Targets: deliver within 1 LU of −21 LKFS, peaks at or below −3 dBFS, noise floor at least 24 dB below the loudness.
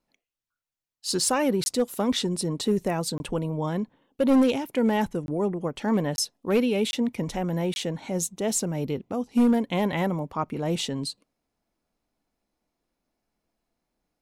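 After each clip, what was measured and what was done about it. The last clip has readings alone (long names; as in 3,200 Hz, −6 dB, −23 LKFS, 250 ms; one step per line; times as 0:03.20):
share of clipped samples 0.6%; peaks flattened at −15.0 dBFS; number of dropouts 6; longest dropout 21 ms; integrated loudness −26.0 LKFS; sample peak −15.0 dBFS; target loudness −21.0 LKFS
→ clipped peaks rebuilt −15 dBFS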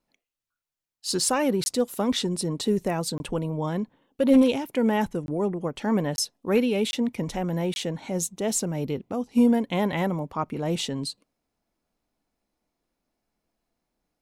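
share of clipped samples 0.0%; number of dropouts 6; longest dropout 21 ms
→ repair the gap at 0:01.64/0:03.18/0:05.26/0:06.16/0:06.91/0:07.74, 21 ms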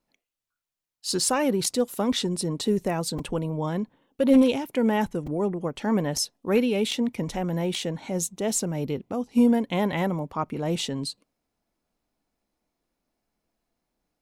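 number of dropouts 0; integrated loudness −26.0 LKFS; sample peak −8.5 dBFS; target loudness −21.0 LKFS
→ level +5 dB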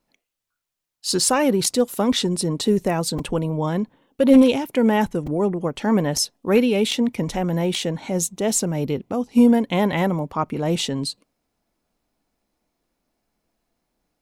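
integrated loudness −21.0 LKFS; sample peak −3.5 dBFS; background noise floor −81 dBFS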